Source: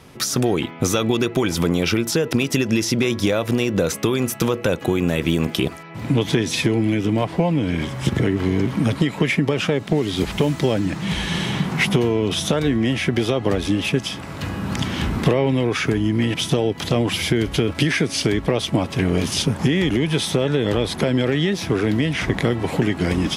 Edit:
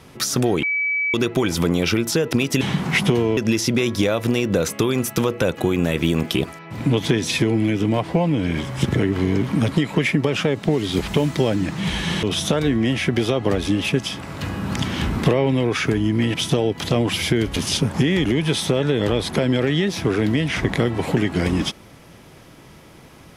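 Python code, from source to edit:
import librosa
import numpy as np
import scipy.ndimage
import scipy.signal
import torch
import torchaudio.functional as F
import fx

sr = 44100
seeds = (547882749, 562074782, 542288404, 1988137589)

y = fx.edit(x, sr, fx.bleep(start_s=0.63, length_s=0.51, hz=2290.0, db=-18.5),
    fx.move(start_s=11.47, length_s=0.76, to_s=2.61),
    fx.cut(start_s=17.56, length_s=1.65), tone=tone)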